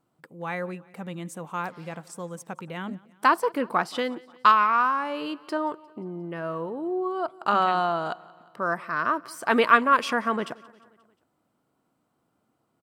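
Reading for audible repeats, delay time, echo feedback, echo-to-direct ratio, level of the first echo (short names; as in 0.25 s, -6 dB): 3, 0.177 s, 57%, -21.5 dB, -23.0 dB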